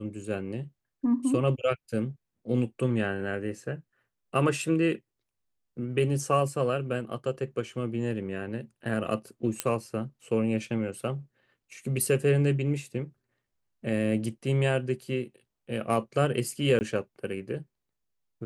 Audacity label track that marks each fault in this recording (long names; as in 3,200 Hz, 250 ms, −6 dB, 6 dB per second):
9.600000	9.600000	click −9 dBFS
16.790000	16.810000	drop-out 19 ms